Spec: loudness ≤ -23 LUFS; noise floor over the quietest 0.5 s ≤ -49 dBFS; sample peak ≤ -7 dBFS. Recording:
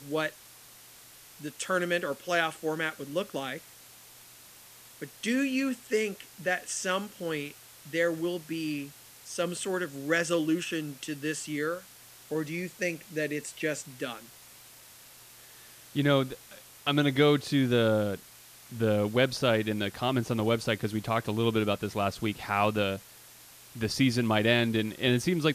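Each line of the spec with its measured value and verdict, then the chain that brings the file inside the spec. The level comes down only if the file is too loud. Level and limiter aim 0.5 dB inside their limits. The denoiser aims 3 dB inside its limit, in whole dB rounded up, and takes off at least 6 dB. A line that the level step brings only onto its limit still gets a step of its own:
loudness -29.5 LUFS: OK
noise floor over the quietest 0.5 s -52 dBFS: OK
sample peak -10.5 dBFS: OK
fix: none

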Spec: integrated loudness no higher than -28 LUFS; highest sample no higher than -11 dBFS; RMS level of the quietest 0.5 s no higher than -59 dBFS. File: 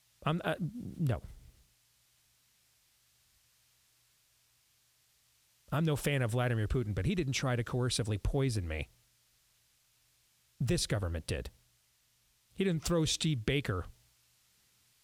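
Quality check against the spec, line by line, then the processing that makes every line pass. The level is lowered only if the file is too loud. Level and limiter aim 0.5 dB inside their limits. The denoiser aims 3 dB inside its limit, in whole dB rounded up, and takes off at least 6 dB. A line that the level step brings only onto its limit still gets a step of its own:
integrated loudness -33.5 LUFS: OK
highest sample -17.5 dBFS: OK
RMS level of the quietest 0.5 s -72 dBFS: OK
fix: none

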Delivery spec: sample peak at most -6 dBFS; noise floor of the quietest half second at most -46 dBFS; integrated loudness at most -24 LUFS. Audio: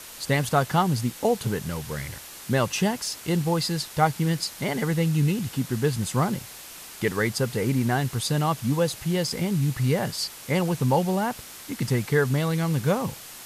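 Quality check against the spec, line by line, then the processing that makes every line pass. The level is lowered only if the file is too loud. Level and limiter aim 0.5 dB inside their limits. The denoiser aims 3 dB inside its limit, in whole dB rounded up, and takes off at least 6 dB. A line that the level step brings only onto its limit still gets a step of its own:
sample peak -7.5 dBFS: OK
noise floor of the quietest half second -42 dBFS: fail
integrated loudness -25.5 LUFS: OK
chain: denoiser 7 dB, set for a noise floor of -42 dBFS

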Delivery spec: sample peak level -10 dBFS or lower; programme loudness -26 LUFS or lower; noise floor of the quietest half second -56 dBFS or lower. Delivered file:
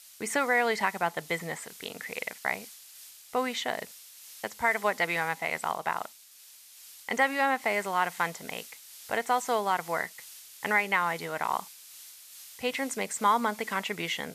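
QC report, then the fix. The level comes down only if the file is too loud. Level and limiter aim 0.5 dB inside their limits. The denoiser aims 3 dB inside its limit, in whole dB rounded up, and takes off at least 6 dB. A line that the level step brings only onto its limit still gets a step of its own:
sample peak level -12.0 dBFS: OK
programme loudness -29.5 LUFS: OK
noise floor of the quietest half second -53 dBFS: fail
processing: denoiser 6 dB, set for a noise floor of -53 dBFS

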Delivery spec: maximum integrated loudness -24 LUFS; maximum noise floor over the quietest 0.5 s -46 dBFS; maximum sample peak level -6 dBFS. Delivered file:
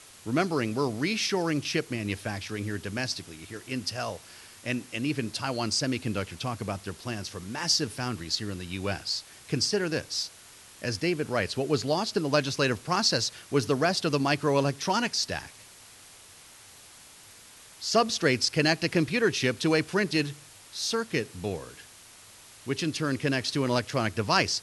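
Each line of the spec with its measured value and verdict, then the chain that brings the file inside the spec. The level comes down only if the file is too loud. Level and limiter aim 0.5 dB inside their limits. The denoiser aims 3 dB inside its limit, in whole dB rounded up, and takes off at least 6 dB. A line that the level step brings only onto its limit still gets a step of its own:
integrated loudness -28.0 LUFS: OK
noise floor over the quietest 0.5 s -51 dBFS: OK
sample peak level -8.5 dBFS: OK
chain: none

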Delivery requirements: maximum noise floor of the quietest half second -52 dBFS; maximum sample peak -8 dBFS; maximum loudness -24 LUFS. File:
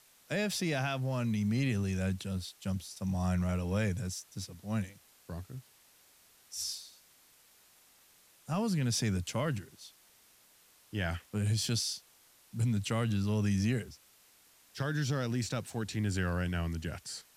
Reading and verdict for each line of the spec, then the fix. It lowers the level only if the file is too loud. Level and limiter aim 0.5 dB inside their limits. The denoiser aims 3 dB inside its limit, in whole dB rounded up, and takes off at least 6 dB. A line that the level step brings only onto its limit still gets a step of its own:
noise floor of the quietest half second -63 dBFS: OK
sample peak -22.0 dBFS: OK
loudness -34.0 LUFS: OK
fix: none

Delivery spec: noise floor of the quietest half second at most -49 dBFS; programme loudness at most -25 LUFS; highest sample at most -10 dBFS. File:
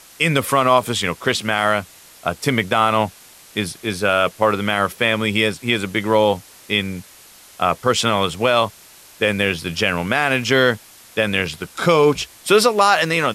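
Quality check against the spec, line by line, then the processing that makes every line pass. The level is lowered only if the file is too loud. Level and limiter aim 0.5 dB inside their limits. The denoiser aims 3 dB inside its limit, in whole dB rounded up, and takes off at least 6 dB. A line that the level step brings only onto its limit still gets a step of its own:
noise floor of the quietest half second -45 dBFS: fail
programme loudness -18.5 LUFS: fail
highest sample -3.0 dBFS: fail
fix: gain -7 dB; limiter -10.5 dBFS

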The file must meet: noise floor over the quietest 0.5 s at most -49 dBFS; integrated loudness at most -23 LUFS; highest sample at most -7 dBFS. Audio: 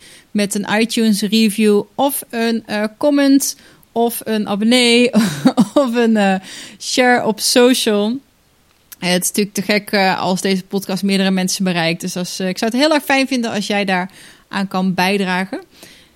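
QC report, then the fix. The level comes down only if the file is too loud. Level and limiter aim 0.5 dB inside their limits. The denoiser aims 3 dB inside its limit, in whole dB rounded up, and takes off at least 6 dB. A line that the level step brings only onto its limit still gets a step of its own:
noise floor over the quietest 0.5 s -55 dBFS: OK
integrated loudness -15.5 LUFS: fail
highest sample -1.5 dBFS: fail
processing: gain -8 dB

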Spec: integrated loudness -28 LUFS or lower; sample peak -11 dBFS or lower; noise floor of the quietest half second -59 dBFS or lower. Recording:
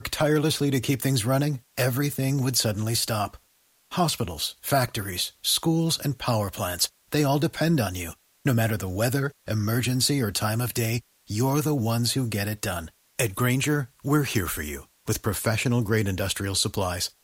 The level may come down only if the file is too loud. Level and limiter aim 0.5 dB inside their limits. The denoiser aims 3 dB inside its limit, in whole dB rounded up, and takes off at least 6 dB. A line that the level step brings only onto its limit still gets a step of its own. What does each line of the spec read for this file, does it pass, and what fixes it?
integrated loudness -25.5 LUFS: fail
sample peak -9.5 dBFS: fail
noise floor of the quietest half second -64 dBFS: OK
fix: gain -3 dB

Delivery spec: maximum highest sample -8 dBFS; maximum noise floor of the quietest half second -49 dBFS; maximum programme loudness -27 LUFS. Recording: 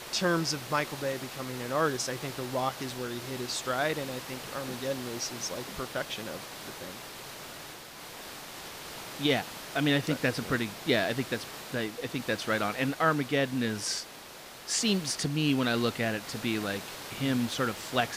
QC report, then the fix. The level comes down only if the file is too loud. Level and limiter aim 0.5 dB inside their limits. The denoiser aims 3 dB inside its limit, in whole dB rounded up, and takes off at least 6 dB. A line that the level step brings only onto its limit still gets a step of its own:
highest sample -13.0 dBFS: OK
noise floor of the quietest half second -47 dBFS: fail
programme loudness -31.0 LUFS: OK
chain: denoiser 6 dB, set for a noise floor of -47 dBFS

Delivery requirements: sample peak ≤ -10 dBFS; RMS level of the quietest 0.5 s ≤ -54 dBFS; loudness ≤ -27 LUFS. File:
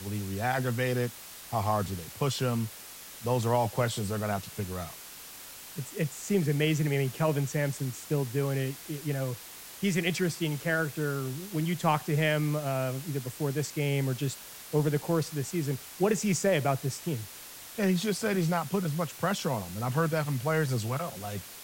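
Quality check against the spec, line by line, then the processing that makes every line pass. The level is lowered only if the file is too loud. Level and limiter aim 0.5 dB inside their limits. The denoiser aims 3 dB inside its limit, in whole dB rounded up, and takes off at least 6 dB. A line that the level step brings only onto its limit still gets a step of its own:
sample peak -12.0 dBFS: OK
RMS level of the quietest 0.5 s -46 dBFS: fail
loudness -30.0 LUFS: OK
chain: denoiser 11 dB, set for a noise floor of -46 dBFS

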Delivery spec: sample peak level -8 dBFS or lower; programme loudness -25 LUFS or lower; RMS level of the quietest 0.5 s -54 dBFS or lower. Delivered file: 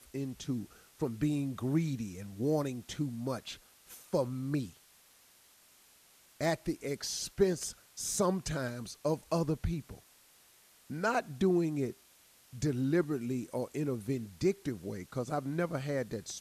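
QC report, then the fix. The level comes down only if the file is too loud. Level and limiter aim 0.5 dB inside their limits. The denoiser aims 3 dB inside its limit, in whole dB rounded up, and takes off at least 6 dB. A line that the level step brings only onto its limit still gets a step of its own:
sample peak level -15.0 dBFS: OK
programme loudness -34.5 LUFS: OK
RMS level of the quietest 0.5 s -63 dBFS: OK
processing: none

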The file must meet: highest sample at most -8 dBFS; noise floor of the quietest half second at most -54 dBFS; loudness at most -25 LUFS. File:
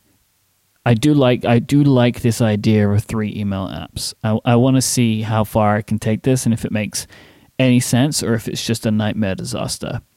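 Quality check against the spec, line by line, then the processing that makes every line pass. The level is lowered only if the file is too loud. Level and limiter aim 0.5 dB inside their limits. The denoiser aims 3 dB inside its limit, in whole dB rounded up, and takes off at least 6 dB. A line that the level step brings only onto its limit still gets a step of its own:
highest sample -4.5 dBFS: fail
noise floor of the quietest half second -62 dBFS: OK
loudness -17.5 LUFS: fail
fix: gain -8 dB

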